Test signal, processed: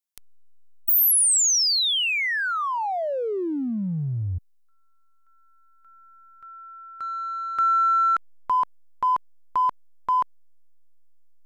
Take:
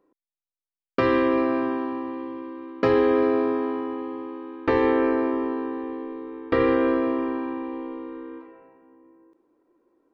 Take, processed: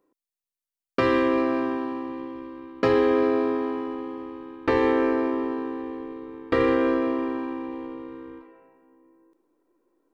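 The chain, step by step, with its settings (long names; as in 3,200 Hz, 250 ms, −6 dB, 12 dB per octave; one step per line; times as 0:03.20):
high-shelf EQ 4,000 Hz +8.5 dB
in parallel at −7 dB: slack as between gear wheels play −29 dBFS
on the sum: level −4 dB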